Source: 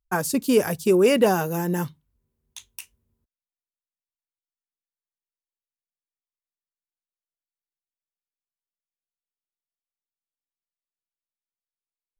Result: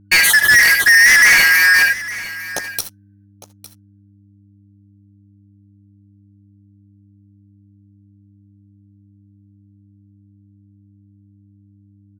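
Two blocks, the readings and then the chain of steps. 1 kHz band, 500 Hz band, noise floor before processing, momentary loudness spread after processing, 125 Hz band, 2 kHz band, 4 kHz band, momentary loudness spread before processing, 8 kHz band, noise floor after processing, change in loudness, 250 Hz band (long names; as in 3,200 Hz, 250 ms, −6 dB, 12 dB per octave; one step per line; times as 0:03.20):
+1.5 dB, −16.0 dB, below −85 dBFS, 18 LU, −6.5 dB, +26.0 dB, +18.0 dB, 12 LU, +16.0 dB, −50 dBFS, +11.0 dB, −15.0 dB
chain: band-splitting scrambler in four parts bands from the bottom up 3142
parametric band 7,500 Hz −11 dB 0.26 octaves
reverb whose tail is shaped and stops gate 100 ms rising, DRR 8 dB
leveller curve on the samples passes 5
on a send: single-tap delay 857 ms −17 dB
on the sum: hum with harmonics 100 Hz, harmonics 3, −50 dBFS −5 dB per octave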